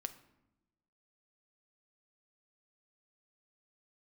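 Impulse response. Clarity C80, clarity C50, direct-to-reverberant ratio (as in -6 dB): 17.0 dB, 14.0 dB, 9.0 dB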